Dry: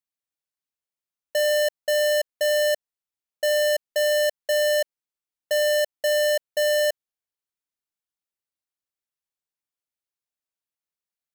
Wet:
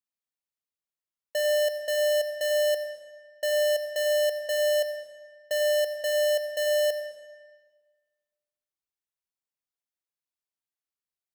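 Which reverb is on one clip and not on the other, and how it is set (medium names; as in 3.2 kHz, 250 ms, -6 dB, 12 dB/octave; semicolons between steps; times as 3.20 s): algorithmic reverb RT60 1.5 s, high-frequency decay 0.85×, pre-delay 50 ms, DRR 9.5 dB; trim -5 dB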